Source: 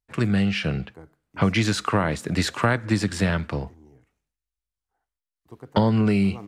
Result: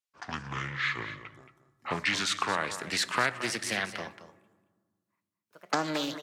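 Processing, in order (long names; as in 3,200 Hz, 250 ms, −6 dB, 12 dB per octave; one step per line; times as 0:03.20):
gliding playback speed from 61% → 147%
high-pass filter 1,500 Hz 6 dB per octave
single-tap delay 224 ms −12.5 dB
convolution reverb RT60 1.6 s, pre-delay 4 ms, DRR 15.5 dB
highs frequency-modulated by the lows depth 0.29 ms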